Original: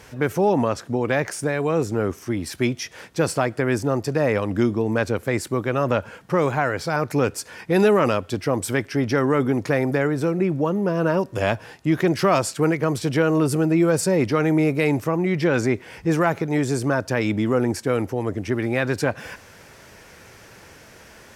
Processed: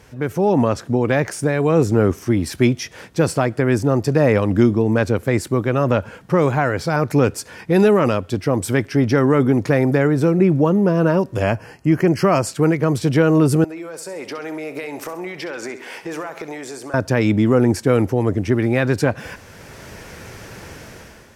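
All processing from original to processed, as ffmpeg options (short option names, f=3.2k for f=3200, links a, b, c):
-filter_complex "[0:a]asettb=1/sr,asplit=3[a][b][c];[a]atrim=end=11.434[d];[b]atrim=start=11.43:end=12.47,asetpts=PTS-STARTPTS,afade=t=in:d=0.004:c=qsin,afade=t=out:st=1.036:d=0.004:c=qsin,asuperstop=centerf=3600:order=12:qfactor=5.2,equalizer=f=3.8k:w=7.3:g=-12.5[e];[c]atrim=start=12.466[f];[d][e]acrossfade=d=0.004:c1=hsin:c2=qsin[g];[g][f]acrossfade=d=0.004:c1=qsin:c2=hsin,asettb=1/sr,asplit=3[h][i][j];[h]atrim=end=13.644[k];[i]atrim=start=13.64:end=16.94,asetpts=PTS-STARTPTS,afade=t=in:d=0.004:c=qsin,afade=t=out:st=3.296:d=0.004:c=qsin,highpass=550,acompressor=threshold=-35dB:ratio=6:attack=3.2:release=140:knee=1:detection=peak,aecho=1:1:66|132|198|264|330:0.237|0.114|0.0546|0.0262|0.0126,atrim=end_sample=145530[l];[j]atrim=start=16.936[m];[k][l]acrossfade=d=0.004:c1=hsin:c2=qsin[n];[n][m]acrossfade=d=0.004:c1=qsin:c2=hsin,dynaudnorm=f=140:g=7:m=11.5dB,lowshelf=f=390:g=6,volume=-4.5dB"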